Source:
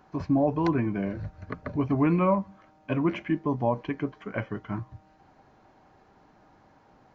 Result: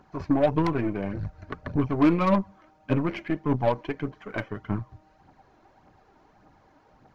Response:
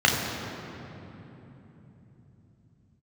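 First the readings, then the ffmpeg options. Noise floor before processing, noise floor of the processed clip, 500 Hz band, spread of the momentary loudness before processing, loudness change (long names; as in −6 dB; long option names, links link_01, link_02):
−60 dBFS, −61 dBFS, +1.5 dB, 14 LU, +1.5 dB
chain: -af "aphaser=in_gain=1:out_gain=1:delay=3.4:decay=0.48:speed=1.7:type=triangular,aeval=exprs='0.282*(cos(1*acos(clip(val(0)/0.282,-1,1)))-cos(1*PI/2))+0.0251*(cos(3*acos(clip(val(0)/0.282,-1,1)))-cos(3*PI/2))+0.0141*(cos(8*acos(clip(val(0)/0.282,-1,1)))-cos(8*PI/2))':channel_layout=same,volume=1.5dB"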